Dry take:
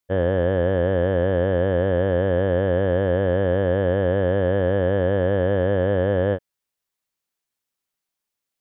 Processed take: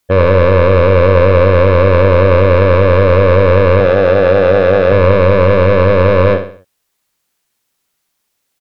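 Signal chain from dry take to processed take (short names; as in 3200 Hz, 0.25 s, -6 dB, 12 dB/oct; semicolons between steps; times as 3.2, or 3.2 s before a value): 3.8–4.92 HPF 110 Hz 12 dB/oct; sine folder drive 6 dB, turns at -10 dBFS; feedback echo 65 ms, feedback 40%, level -9 dB; gain +5 dB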